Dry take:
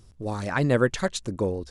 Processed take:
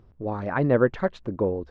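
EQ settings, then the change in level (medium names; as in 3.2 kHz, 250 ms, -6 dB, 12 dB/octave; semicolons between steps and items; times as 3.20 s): tape spacing loss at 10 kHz 39 dB; bass shelf 250 Hz -9 dB; treble shelf 2.9 kHz -9.5 dB; +6.5 dB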